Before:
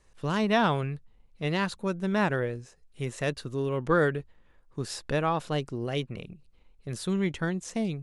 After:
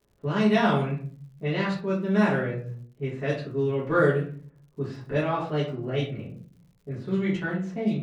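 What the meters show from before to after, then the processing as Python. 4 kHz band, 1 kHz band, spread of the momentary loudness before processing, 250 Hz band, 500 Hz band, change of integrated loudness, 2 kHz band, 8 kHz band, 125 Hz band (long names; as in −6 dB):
−1.0 dB, +0.5 dB, 14 LU, +4.0 dB, +3.0 dB, +2.5 dB, +1.5 dB, below −10 dB, +3.5 dB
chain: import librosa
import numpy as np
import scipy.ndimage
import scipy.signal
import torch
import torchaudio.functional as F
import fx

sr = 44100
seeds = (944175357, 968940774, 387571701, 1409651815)

y = scipy.signal.sosfilt(scipy.signal.butter(2, 82.0, 'highpass', fs=sr, output='sos'), x)
y = fx.room_shoebox(y, sr, seeds[0], volume_m3=46.0, walls='mixed', distance_m=1.8)
y = fx.env_lowpass(y, sr, base_hz=790.0, full_db=-9.5)
y = fx.dmg_crackle(y, sr, seeds[1], per_s=130.0, level_db=-45.0)
y = y * 10.0 ** (-8.5 / 20.0)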